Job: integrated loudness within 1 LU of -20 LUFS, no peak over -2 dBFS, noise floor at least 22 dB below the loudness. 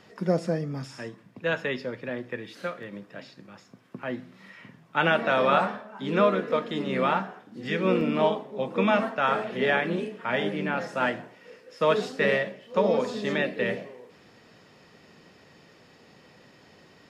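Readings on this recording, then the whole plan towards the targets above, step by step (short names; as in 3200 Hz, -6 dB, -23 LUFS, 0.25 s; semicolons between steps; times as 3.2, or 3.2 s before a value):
dropouts 2; longest dropout 1.6 ms; loudness -27.0 LUFS; peak -10.0 dBFS; loudness target -20.0 LUFS
-> interpolate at 2.83/8.01, 1.6 ms; gain +7 dB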